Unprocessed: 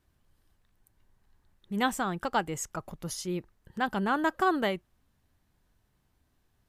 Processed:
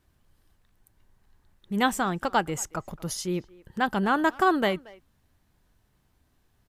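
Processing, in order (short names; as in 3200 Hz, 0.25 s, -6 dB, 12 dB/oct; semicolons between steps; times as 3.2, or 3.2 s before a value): speakerphone echo 0.23 s, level -21 dB; gain +4 dB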